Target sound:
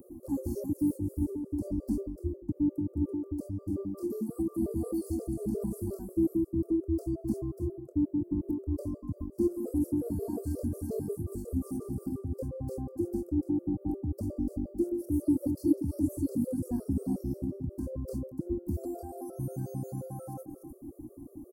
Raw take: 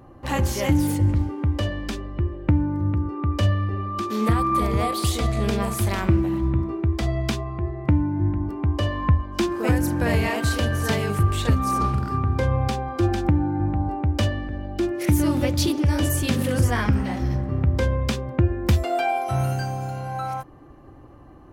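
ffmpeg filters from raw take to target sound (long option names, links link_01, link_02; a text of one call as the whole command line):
ffmpeg -i in.wav -filter_complex "[0:a]acrossover=split=220|1500[link_01][link_02][link_03];[link_03]asoftclip=type=tanh:threshold=-22dB[link_04];[link_01][link_02][link_04]amix=inputs=3:normalize=0,asplit=2[link_05][link_06];[link_06]adelay=291.5,volume=-16dB,highshelf=frequency=4000:gain=-6.56[link_07];[link_05][link_07]amix=inputs=2:normalize=0,areverse,acompressor=threshold=-27dB:ratio=16,areverse,highshelf=frequency=3100:gain=8,asplit=2[link_08][link_09];[link_09]adelay=25,volume=-10.5dB[link_10];[link_08][link_10]amix=inputs=2:normalize=0,afftfilt=real='re*(1-between(b*sr/4096,1700,4200))':imag='im*(1-between(b*sr/4096,1700,4200))':win_size=4096:overlap=0.75,firequalizer=gain_entry='entry(140,0);entry(270,13);entry(790,-9);entry(1500,-27);entry(9300,12);entry(13000,15)':delay=0.05:min_phase=1,acrossover=split=4000[link_11][link_12];[link_12]acompressor=threshold=-48dB:ratio=4:attack=1:release=60[link_13];[link_11][link_13]amix=inputs=2:normalize=0,afftfilt=real='re*gt(sin(2*PI*5.6*pts/sr)*(1-2*mod(floor(b*sr/1024/360),2)),0)':imag='im*gt(sin(2*PI*5.6*pts/sr)*(1-2*mod(floor(b*sr/1024/360),2)),0)':win_size=1024:overlap=0.75,volume=-3.5dB" out.wav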